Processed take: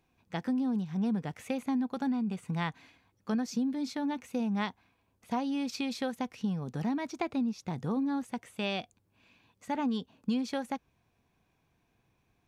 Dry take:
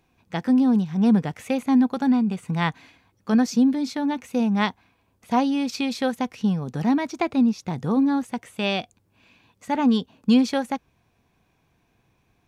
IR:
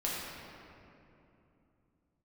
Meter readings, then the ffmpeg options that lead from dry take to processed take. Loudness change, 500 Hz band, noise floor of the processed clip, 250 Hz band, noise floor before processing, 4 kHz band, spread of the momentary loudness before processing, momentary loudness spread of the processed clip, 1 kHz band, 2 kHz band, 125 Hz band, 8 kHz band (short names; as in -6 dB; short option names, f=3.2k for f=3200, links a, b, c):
-10.5 dB, -9.5 dB, -74 dBFS, -11.0 dB, -67 dBFS, -9.5 dB, 8 LU, 6 LU, -10.0 dB, -9.5 dB, -9.0 dB, n/a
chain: -af "acompressor=threshold=-21dB:ratio=4,volume=-7dB"